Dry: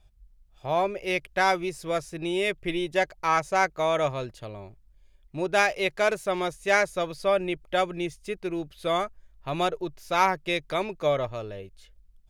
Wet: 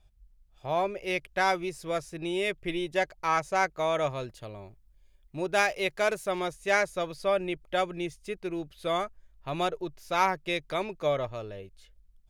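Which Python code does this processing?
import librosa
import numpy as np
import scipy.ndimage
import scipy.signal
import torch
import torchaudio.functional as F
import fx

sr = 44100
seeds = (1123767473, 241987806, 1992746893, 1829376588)

y = fx.high_shelf(x, sr, hz=9400.0, db=5.5, at=(4.11, 6.39))
y = F.gain(torch.from_numpy(y), -3.0).numpy()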